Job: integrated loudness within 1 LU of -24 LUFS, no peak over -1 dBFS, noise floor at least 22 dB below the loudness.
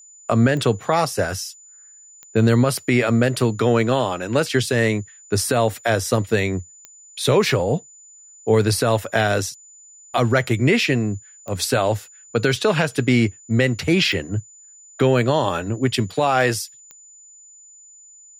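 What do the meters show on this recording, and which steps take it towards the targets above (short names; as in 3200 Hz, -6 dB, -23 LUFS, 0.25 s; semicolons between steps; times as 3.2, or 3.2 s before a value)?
clicks 6; steady tone 7000 Hz; tone level -44 dBFS; loudness -20.0 LUFS; peak -5.5 dBFS; loudness target -24.0 LUFS
-> de-click; notch 7000 Hz, Q 30; gain -4 dB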